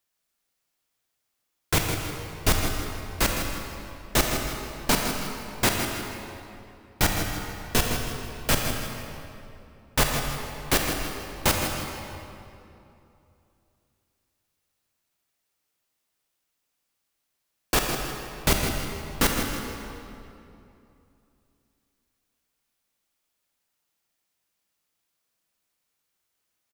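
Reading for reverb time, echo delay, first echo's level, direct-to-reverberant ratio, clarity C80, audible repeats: 2.8 s, 160 ms, -9.0 dB, 1.0 dB, 2.0 dB, 2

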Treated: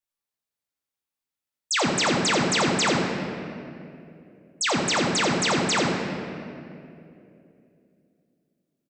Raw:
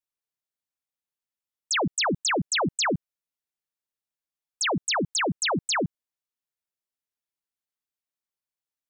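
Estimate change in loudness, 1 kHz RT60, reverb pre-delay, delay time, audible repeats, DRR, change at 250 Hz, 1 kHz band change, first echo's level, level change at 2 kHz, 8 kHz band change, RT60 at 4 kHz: +2.5 dB, 2.3 s, 3 ms, 86 ms, 1, -1.0 dB, +5.0 dB, +3.5 dB, -6.5 dB, +3.0 dB, +2.0 dB, 1.6 s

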